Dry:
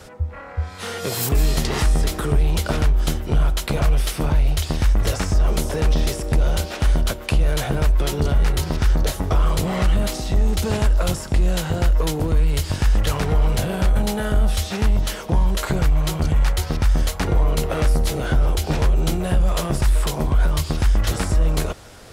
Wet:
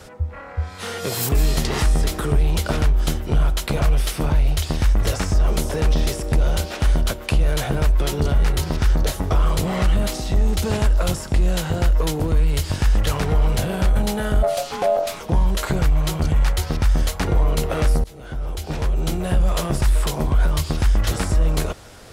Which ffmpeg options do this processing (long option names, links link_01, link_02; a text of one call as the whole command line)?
ffmpeg -i in.wav -filter_complex "[0:a]asplit=3[link_01][link_02][link_03];[link_01]afade=type=out:start_time=14.42:duration=0.02[link_04];[link_02]aeval=exprs='val(0)*sin(2*PI*630*n/s)':channel_layout=same,afade=type=in:start_time=14.42:duration=0.02,afade=type=out:start_time=15.19:duration=0.02[link_05];[link_03]afade=type=in:start_time=15.19:duration=0.02[link_06];[link_04][link_05][link_06]amix=inputs=3:normalize=0,asplit=2[link_07][link_08];[link_07]atrim=end=18.04,asetpts=PTS-STARTPTS,afade=type=out:start_time=18.036:duration=0.004:curve=hsin:silence=0.0749894[link_09];[link_08]atrim=start=18.04,asetpts=PTS-STARTPTS,afade=type=in:duration=1.35:silence=0.0749894[link_10];[link_09][link_10]concat=n=2:v=0:a=1" out.wav